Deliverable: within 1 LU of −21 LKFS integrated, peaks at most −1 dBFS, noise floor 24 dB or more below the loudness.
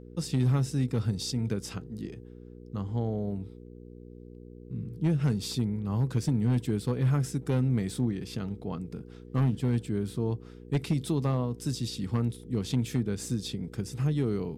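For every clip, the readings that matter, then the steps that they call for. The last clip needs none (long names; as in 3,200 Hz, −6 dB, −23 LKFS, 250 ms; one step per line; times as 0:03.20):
share of clipped samples 0.5%; peaks flattened at −19.0 dBFS; mains hum 60 Hz; hum harmonics up to 480 Hz; level of the hum −46 dBFS; integrated loudness −30.5 LKFS; sample peak −19.0 dBFS; target loudness −21.0 LKFS
→ clipped peaks rebuilt −19 dBFS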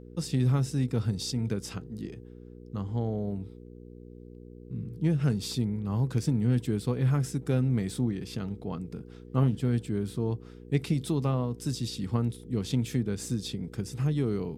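share of clipped samples 0.0%; mains hum 60 Hz; hum harmonics up to 480 Hz; level of the hum −46 dBFS
→ hum removal 60 Hz, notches 8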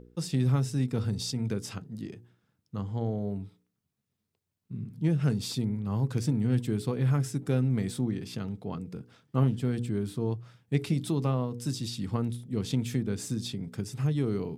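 mains hum none found; integrated loudness −30.5 LKFS; sample peak −12.5 dBFS; target loudness −21.0 LKFS
→ level +9.5 dB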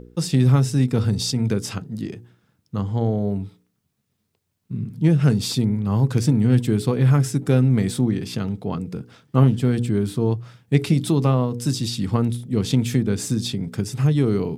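integrated loudness −21.0 LKFS; sample peak −3.0 dBFS; background noise floor −73 dBFS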